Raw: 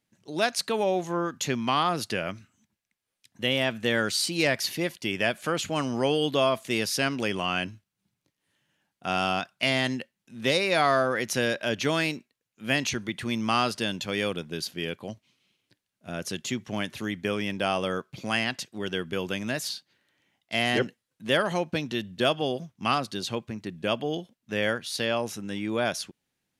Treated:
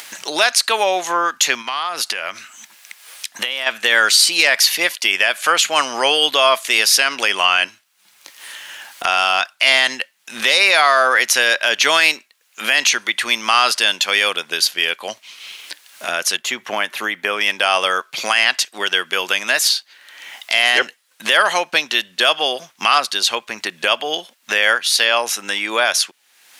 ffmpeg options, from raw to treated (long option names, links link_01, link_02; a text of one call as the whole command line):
ffmpeg -i in.wav -filter_complex "[0:a]asplit=3[link_01][link_02][link_03];[link_01]afade=type=out:start_time=1.61:duration=0.02[link_04];[link_02]acompressor=threshold=-34dB:ratio=12:attack=3.2:release=140:knee=1:detection=peak,afade=type=in:start_time=1.61:duration=0.02,afade=type=out:start_time=3.66:duration=0.02[link_05];[link_03]afade=type=in:start_time=3.66:duration=0.02[link_06];[link_04][link_05][link_06]amix=inputs=3:normalize=0,asettb=1/sr,asplit=3[link_07][link_08][link_09];[link_07]atrim=end=16.364[link_10];[link_08]atrim=start=16.36:end=17.41,asetpts=PTS-STARTPTS,afade=type=in:duration=0.004:curve=qsin,afade=type=out:start_time=1.046:duration=0.004:curve=qsin,equalizer=frequency=6100:width_type=o:width=2.3:gain=-11[link_11];[link_09]atrim=start=17.406[link_12];[link_10][link_11]acrossfade=duration=0.004:curve1=hsin:curve2=qsin[link_13];[link_13][link_12]acrossfade=duration=0.004:curve1=qsin:curve2=hsin,highpass=1000,acompressor=mode=upward:threshold=-33dB:ratio=2.5,alimiter=level_in=18.5dB:limit=-1dB:release=50:level=0:latency=1,volume=-1dB" out.wav